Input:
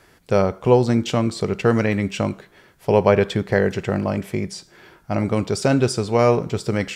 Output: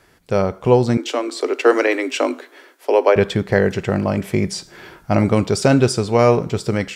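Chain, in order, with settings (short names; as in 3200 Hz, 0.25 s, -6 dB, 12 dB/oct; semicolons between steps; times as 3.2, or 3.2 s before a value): 0.97–3.16 Chebyshev high-pass 250 Hz, order 10; AGC; gain -1 dB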